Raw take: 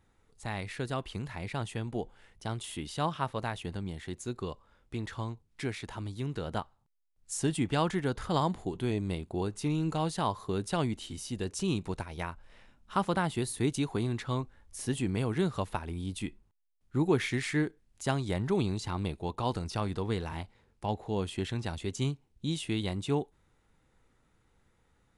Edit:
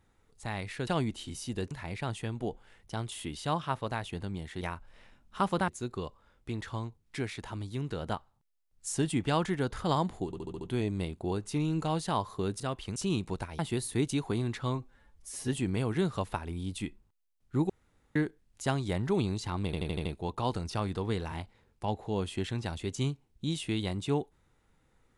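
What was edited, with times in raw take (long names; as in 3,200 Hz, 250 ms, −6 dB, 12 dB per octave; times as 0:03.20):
0:00.87–0:01.23: swap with 0:10.70–0:11.54
0:08.71: stutter 0.07 s, 6 plays
0:12.17–0:13.24: move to 0:04.13
0:14.40–0:14.89: time-stretch 1.5×
0:17.10–0:17.56: fill with room tone
0:19.06: stutter 0.08 s, 6 plays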